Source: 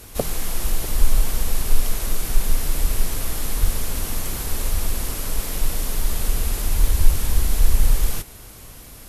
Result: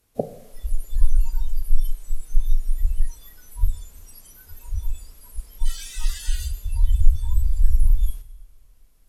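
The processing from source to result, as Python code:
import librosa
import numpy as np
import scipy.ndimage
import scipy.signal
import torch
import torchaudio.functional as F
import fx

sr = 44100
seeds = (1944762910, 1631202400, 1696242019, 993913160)

y = fx.dmg_noise_band(x, sr, seeds[0], low_hz=770.0, high_hz=12000.0, level_db=-35.0, at=(5.64, 6.47), fade=0.02)
y = fx.noise_reduce_blind(y, sr, reduce_db=26)
y = fx.rev_double_slope(y, sr, seeds[1], early_s=0.9, late_s=3.5, knee_db=-22, drr_db=10.5)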